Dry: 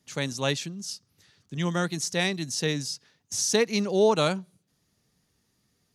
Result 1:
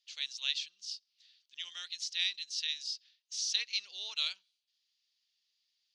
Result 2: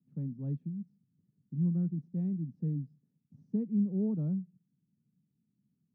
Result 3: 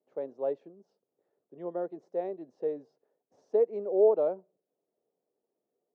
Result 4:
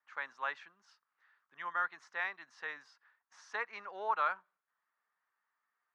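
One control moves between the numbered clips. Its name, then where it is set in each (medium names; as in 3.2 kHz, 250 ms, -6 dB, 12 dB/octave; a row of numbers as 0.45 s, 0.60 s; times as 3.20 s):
Butterworth band-pass, frequency: 3.7 kHz, 180 Hz, 510 Hz, 1.3 kHz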